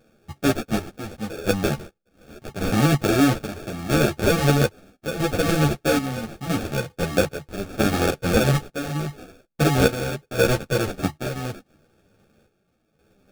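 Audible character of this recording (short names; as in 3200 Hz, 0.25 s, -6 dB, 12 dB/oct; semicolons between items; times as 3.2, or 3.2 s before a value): chopped level 0.77 Hz, depth 65%, duty 60%; aliases and images of a low sample rate 1000 Hz, jitter 0%; a shimmering, thickened sound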